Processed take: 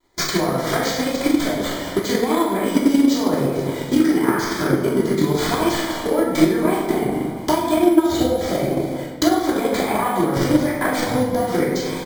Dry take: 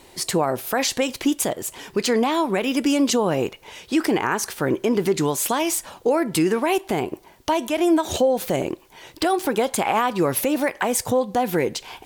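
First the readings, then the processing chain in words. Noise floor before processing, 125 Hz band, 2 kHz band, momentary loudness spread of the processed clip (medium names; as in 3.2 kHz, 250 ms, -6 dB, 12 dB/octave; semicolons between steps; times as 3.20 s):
-50 dBFS, +6.0 dB, +2.0 dB, 6 LU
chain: backward echo that repeats 112 ms, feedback 68%, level -12.5 dB; compression, threshold -24 dBFS, peak gain reduction 10.5 dB; treble shelf 5.3 kHz -6 dB; gate with hold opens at -27 dBFS; treble shelf 12 kHz +10.5 dB; careless resampling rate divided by 4×, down none, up hold; Butterworth band-stop 2.7 kHz, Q 4.3; doubling 43 ms -7 dB; simulated room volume 580 m³, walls mixed, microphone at 3 m; transient shaper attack +7 dB, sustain 0 dB; vibrato 0.94 Hz 35 cents; trim -1 dB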